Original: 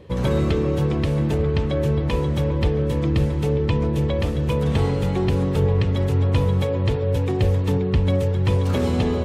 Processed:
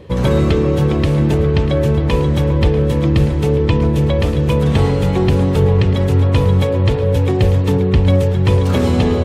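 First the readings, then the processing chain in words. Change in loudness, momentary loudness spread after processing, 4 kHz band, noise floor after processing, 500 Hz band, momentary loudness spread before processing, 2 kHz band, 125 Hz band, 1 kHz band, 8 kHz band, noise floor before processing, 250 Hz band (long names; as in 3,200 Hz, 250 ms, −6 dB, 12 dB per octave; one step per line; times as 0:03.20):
+6.5 dB, 2 LU, +6.5 dB, −17 dBFS, +6.5 dB, 2 LU, +6.5 dB, +6.5 dB, +6.5 dB, can't be measured, −23 dBFS, +7.0 dB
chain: single-tap delay 641 ms −14.5 dB
level +6.5 dB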